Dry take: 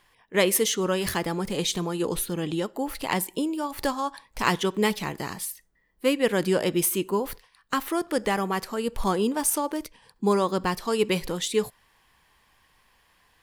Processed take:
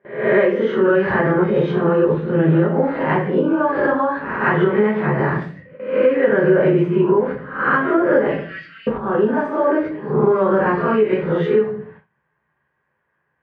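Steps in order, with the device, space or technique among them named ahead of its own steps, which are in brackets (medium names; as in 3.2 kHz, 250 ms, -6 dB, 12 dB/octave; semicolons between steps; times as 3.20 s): reverse spectral sustain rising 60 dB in 0.56 s; 8.27–8.87 s: inverse Chebyshev high-pass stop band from 940 Hz, stop band 50 dB; simulated room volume 32 m³, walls mixed, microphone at 1.1 m; gate with hold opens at -34 dBFS; bass amplifier (compression 5:1, threshold -20 dBFS, peak gain reduction 15.5 dB; cabinet simulation 77–2100 Hz, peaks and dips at 160 Hz +8 dB, 360 Hz +5 dB, 580 Hz +7 dB, 1.6 kHz +9 dB); trim +3.5 dB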